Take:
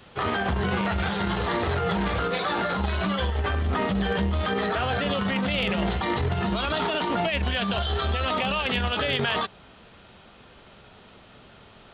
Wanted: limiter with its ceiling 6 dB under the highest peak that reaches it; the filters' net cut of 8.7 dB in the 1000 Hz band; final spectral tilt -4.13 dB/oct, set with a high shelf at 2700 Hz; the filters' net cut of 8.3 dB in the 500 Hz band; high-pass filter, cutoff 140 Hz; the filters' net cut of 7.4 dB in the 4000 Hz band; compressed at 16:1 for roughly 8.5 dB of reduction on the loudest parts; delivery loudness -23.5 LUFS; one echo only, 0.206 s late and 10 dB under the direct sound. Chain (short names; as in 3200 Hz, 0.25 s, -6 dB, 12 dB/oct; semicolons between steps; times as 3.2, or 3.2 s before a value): HPF 140 Hz; bell 500 Hz -8 dB; bell 1000 Hz -8 dB; high shelf 2700 Hz -7 dB; bell 4000 Hz -4 dB; compressor 16:1, threshold -34 dBFS; limiter -31.5 dBFS; echo 0.206 s -10 dB; gain +16.5 dB